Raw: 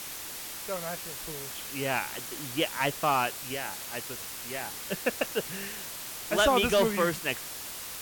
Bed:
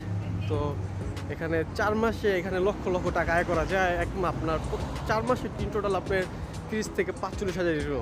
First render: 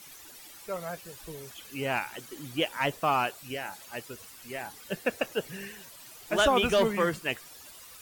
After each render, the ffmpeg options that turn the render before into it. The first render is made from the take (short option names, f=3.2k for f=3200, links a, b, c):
-af "afftdn=nr=13:nf=-40"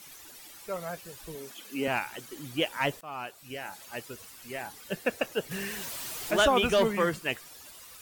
-filter_complex "[0:a]asettb=1/sr,asplit=3[a][b][c];[a]atrim=end=1.354[d];[b]atrim=start=1.35:end=1.88,asetpts=PTS-STARTPTS,afade=t=in:d=0.004:c=qsin,afade=t=out:st=0.526:d=0.004:c=qsin,highpass=f=240:t=q:w=1.8[e];[c]atrim=start=1.876[f];[d][e]acrossfade=d=0.004:c1=hsin:c2=qsin[g];[g][f]acrossfade=d=0.004:c1=qsin:c2=hsin,asettb=1/sr,asplit=3[h][i][j];[h]atrim=end=5.514[k];[i]atrim=start=5.51:end=6.46,asetpts=PTS-STARTPTS,afade=t=in:d=0.004:c=qsin,afade=t=out:st=0.946:d=0.004:c=qsin,aeval=exprs='val(0)+0.5*0.0188*sgn(val(0))':c=same[l];[j]atrim=start=6.456[m];[k][l]acrossfade=d=0.004:c1=hsin:c2=qsin[n];[n][m]acrossfade=d=0.004:c1=qsin:c2=hsin,asplit=2[o][p];[o]atrim=end=3.01,asetpts=PTS-STARTPTS,afade=t=out:st=3.006:d=0.004:c=hsin:silence=0.0841395[q];[p]atrim=start=3.01,asetpts=PTS-STARTPTS,afade=t=in:d=0.83:silence=0.0841395[r];[q][r]concat=n=2:v=0:a=1"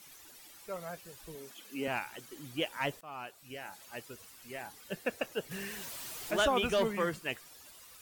-af "volume=-5.5dB"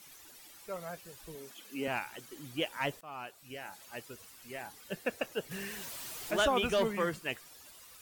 -af anull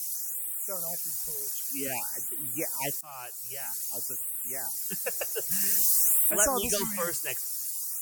-af "aexciter=amount=6.6:drive=8.1:freq=5k,afftfilt=real='re*(1-between(b*sr/1024,210*pow(5500/210,0.5+0.5*sin(2*PI*0.52*pts/sr))/1.41,210*pow(5500/210,0.5+0.5*sin(2*PI*0.52*pts/sr))*1.41))':imag='im*(1-between(b*sr/1024,210*pow(5500/210,0.5+0.5*sin(2*PI*0.52*pts/sr))/1.41,210*pow(5500/210,0.5+0.5*sin(2*PI*0.52*pts/sr))*1.41))':win_size=1024:overlap=0.75"